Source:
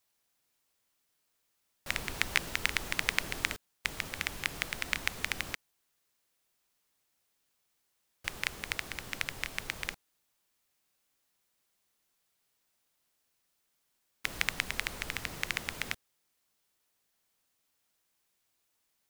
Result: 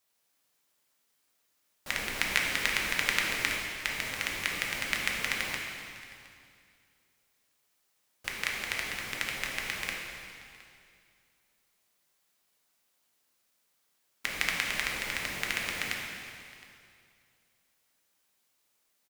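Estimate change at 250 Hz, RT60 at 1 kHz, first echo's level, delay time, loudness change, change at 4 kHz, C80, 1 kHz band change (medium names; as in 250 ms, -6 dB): +3.0 dB, 2.3 s, -21.5 dB, 715 ms, +3.5 dB, +3.5 dB, 3.0 dB, +4.0 dB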